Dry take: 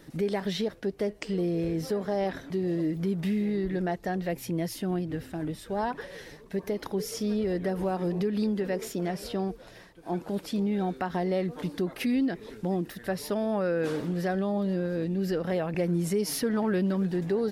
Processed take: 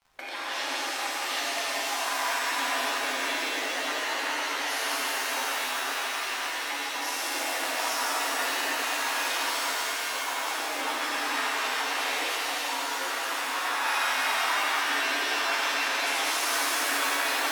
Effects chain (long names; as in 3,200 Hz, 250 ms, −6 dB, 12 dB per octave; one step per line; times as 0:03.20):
delay that plays each chunk backwards 468 ms, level −2 dB
gate on every frequency bin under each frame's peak −20 dB weak
Chebyshev high-pass filter 260 Hz, order 8
noise gate with hold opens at −46 dBFS
surface crackle 45 per second −53 dBFS
spectral tilt −3 dB per octave
in parallel at −1 dB: compressor whose output falls as the input rises −45 dBFS
on the sum: soft clipping −25.5 dBFS, distortion −28 dB
low shelf with overshoot 620 Hz −8.5 dB, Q 1.5
on a send: delay with a high-pass on its return 81 ms, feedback 83%, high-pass 4,800 Hz, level −4 dB
on the sum: reverb with rising layers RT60 3.4 s, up +7 semitones, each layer −2 dB, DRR −6.5 dB
level +2.5 dB